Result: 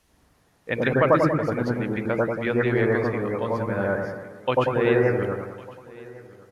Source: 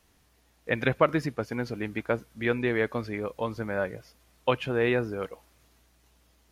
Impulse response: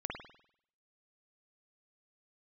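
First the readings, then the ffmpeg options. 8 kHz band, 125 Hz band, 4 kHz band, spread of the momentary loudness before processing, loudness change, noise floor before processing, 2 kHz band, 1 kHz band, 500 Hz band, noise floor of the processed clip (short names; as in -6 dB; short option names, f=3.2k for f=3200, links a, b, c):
n/a, +7.0 dB, 0.0 dB, 9 LU, +5.5 dB, -65 dBFS, +4.0 dB, +6.0 dB, +6.5 dB, -63 dBFS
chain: -filter_complex "[0:a]aecho=1:1:1104:0.0794[a];[1:a]atrim=start_sample=2205,asetrate=23814,aresample=44100[b];[a][b]afir=irnorm=-1:irlink=0"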